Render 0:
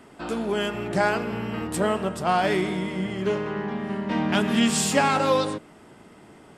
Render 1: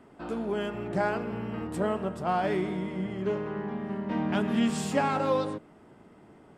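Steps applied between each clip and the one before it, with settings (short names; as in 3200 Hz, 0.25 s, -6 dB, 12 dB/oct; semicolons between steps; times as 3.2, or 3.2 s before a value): high shelf 2100 Hz -11 dB; gain -4 dB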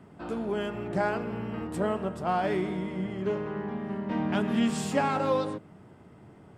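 band noise 83–200 Hz -55 dBFS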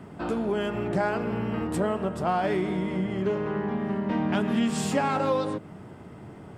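compressor 2:1, threshold -35 dBFS, peak gain reduction 8 dB; gain +8 dB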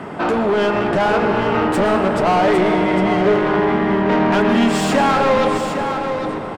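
overdrive pedal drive 23 dB, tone 2100 Hz, clips at -13.5 dBFS; echo 0.806 s -8 dB; reverb RT60 3.5 s, pre-delay 0.107 s, DRR 7 dB; gain +4.5 dB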